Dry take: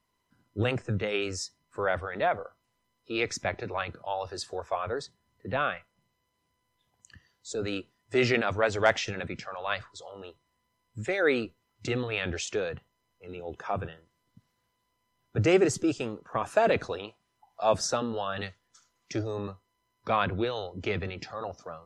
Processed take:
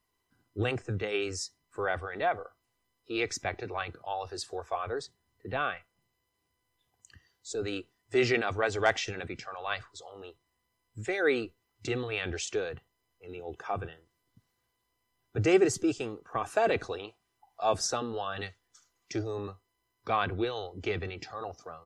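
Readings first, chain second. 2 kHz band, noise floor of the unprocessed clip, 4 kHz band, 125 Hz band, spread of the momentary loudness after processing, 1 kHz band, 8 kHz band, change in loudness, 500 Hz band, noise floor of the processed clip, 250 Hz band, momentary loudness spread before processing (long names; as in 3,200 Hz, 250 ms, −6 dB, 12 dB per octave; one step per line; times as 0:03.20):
−2.0 dB, −77 dBFS, −2.0 dB, −3.5 dB, 16 LU, −2.0 dB, −0.5 dB, −2.0 dB, −2.0 dB, −79 dBFS, −2.0 dB, 16 LU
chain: high-shelf EQ 9,600 Hz +6.5 dB
comb filter 2.6 ms, depth 38%
level −3 dB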